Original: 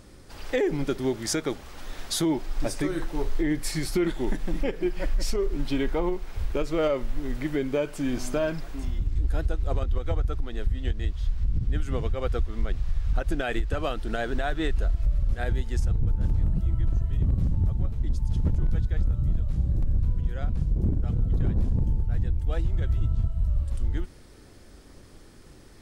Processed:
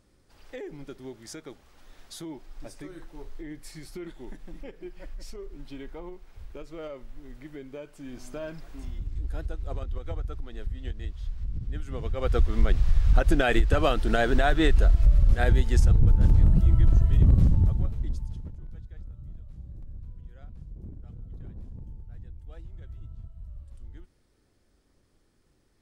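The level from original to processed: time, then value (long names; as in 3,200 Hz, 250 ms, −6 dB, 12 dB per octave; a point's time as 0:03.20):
0:07.97 −14.5 dB
0:08.79 −7 dB
0:11.93 −7 dB
0:12.45 +5.5 dB
0:17.42 +5.5 dB
0:18.17 −5 dB
0:18.53 −17.5 dB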